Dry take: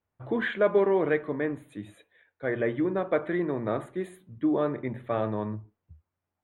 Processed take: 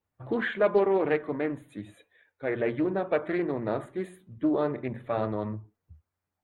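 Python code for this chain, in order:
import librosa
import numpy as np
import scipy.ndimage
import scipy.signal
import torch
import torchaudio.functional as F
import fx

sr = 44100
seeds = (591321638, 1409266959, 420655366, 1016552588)

y = fx.spec_quant(x, sr, step_db=15)
y = fx.doppler_dist(y, sr, depth_ms=0.2)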